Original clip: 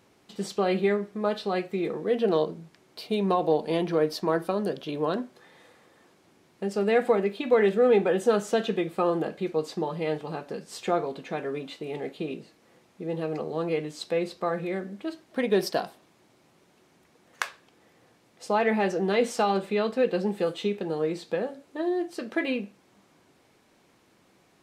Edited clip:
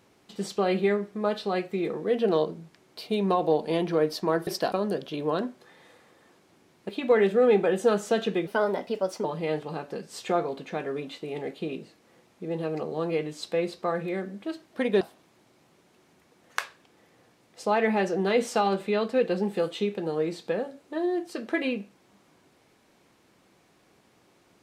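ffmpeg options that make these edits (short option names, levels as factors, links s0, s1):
-filter_complex "[0:a]asplit=7[s0][s1][s2][s3][s4][s5][s6];[s0]atrim=end=4.472[s7];[s1]atrim=start=15.588:end=15.842[s8];[s2]atrim=start=4.468:end=6.642[s9];[s3]atrim=start=7.308:end=8.894[s10];[s4]atrim=start=8.89:end=9.83,asetpts=PTS-STARTPTS,asetrate=53361,aresample=44100[s11];[s5]atrim=start=9.826:end=15.592[s12];[s6]atrim=start=15.838[s13];[s7][s8]acrossfade=d=0.004:c1=hsin:c2=hsin[s14];[s14][s9]acrossfade=d=0.004:c1=hsin:c2=hsin[s15];[s15][s10]acrossfade=d=0.004:c1=hsin:c2=hsin[s16];[s16][s11]acrossfade=d=0.004:c1=hsin:c2=hsin[s17];[s17][s12]acrossfade=d=0.004:c1=hsin:c2=hsin[s18];[s18][s13]acrossfade=d=0.004:c1=hsin:c2=hsin"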